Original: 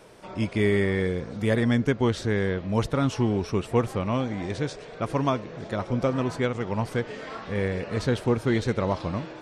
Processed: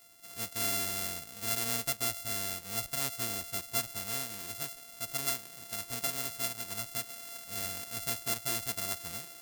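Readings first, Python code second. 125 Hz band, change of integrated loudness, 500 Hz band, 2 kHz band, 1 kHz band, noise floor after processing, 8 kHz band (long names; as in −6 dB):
−20.0 dB, −7.0 dB, −19.0 dB, −8.0 dB, −10.0 dB, −51 dBFS, +12.0 dB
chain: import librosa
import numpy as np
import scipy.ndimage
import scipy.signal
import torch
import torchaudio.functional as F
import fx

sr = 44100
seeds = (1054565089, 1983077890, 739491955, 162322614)

y = np.r_[np.sort(x[:len(x) // 64 * 64].reshape(-1, 64), axis=1).ravel(), x[len(x) // 64 * 64:]]
y = F.preemphasis(torch.from_numpy(y), 0.9).numpy()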